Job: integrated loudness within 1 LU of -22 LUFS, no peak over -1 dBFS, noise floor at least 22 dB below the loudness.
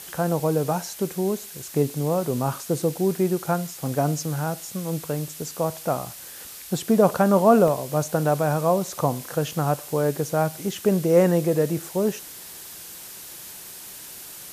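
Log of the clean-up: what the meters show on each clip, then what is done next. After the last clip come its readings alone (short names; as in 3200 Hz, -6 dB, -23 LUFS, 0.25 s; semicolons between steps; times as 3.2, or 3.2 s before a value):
dropouts 5; longest dropout 1.2 ms; noise floor -40 dBFS; noise floor target -46 dBFS; loudness -23.5 LUFS; peak -4.0 dBFS; loudness target -22.0 LUFS
-> interpolate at 0.4/1.9/3.88/7.1/7.68, 1.2 ms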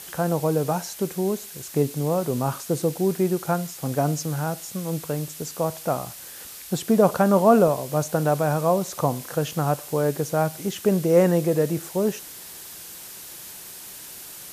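dropouts 0; noise floor -40 dBFS; noise floor target -46 dBFS
-> denoiser 6 dB, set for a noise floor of -40 dBFS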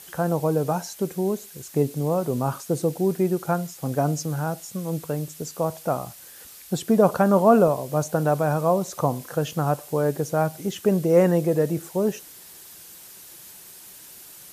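noise floor -45 dBFS; noise floor target -46 dBFS
-> denoiser 6 dB, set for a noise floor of -45 dBFS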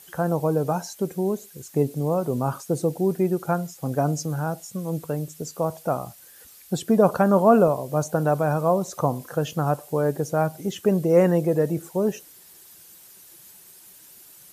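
noise floor -49 dBFS; loudness -23.5 LUFS; peak -4.0 dBFS; loudness target -22.0 LUFS
-> gain +1.5 dB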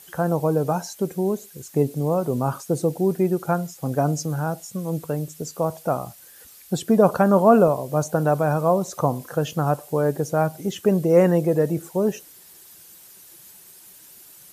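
loudness -22.0 LUFS; peak -2.5 dBFS; noise floor -48 dBFS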